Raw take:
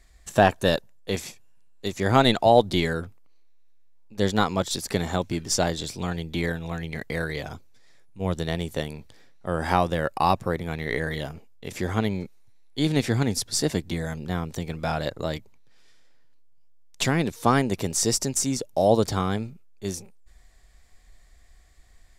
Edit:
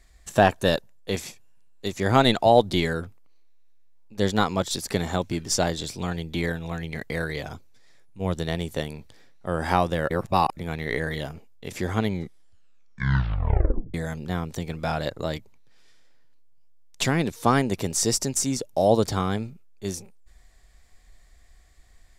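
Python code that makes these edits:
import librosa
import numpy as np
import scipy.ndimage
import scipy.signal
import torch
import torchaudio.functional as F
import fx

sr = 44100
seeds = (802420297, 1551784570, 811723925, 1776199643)

y = fx.edit(x, sr, fx.reverse_span(start_s=10.1, length_s=0.47),
    fx.tape_stop(start_s=12.09, length_s=1.85), tone=tone)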